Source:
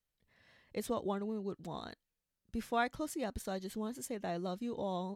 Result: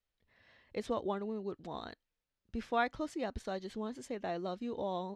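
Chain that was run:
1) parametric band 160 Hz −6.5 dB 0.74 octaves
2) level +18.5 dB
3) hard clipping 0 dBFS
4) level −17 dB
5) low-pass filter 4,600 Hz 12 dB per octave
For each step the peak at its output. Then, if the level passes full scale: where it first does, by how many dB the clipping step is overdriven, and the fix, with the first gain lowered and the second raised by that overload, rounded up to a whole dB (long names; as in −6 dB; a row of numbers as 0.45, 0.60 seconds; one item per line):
−21.5, −3.0, −3.0, −20.0, −20.5 dBFS
no step passes full scale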